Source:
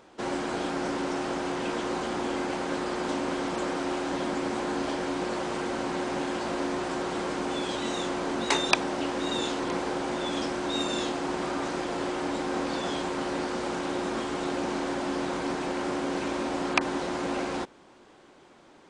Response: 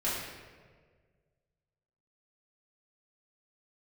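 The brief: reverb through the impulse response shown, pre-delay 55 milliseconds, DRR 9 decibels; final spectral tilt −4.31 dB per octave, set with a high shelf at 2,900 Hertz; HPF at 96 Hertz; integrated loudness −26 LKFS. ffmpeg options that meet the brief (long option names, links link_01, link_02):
-filter_complex "[0:a]highpass=96,highshelf=frequency=2900:gain=-3,asplit=2[link_01][link_02];[1:a]atrim=start_sample=2205,adelay=55[link_03];[link_02][link_03]afir=irnorm=-1:irlink=0,volume=-17dB[link_04];[link_01][link_04]amix=inputs=2:normalize=0,volume=3.5dB"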